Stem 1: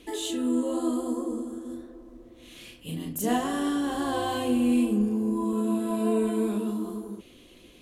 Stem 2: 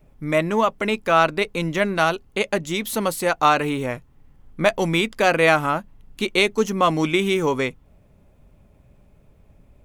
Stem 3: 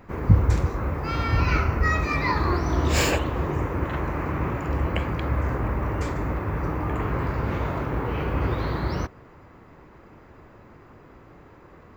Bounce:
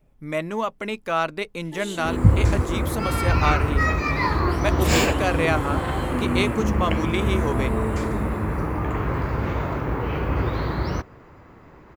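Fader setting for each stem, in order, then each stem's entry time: −3.5, −6.5, +1.5 decibels; 1.65, 0.00, 1.95 seconds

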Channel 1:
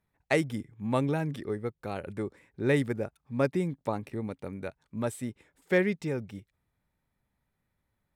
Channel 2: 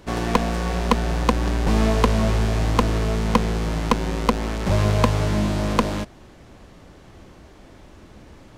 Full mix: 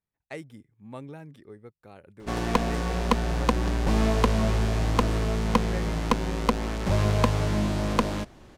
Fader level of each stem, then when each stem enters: −13.0, −4.0 decibels; 0.00, 2.20 seconds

